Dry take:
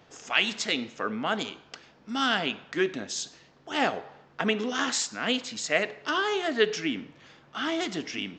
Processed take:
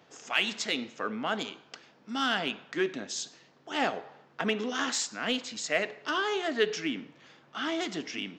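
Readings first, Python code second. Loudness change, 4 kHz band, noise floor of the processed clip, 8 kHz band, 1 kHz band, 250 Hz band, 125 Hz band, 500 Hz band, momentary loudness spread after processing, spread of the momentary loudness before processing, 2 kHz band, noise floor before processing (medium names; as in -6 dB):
-3.0 dB, -3.0 dB, -61 dBFS, -2.5 dB, -2.5 dB, -3.0 dB, -4.0 dB, -3.0 dB, 12 LU, 12 LU, -3.0 dB, -58 dBFS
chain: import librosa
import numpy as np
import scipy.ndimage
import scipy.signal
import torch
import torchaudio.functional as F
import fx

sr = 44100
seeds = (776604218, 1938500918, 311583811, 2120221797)

p1 = scipy.signal.sosfilt(scipy.signal.butter(2, 140.0, 'highpass', fs=sr, output='sos'), x)
p2 = np.clip(p1, -10.0 ** (-22.0 / 20.0), 10.0 ** (-22.0 / 20.0))
p3 = p1 + F.gain(torch.from_numpy(p2), -11.0).numpy()
y = F.gain(torch.from_numpy(p3), -4.5).numpy()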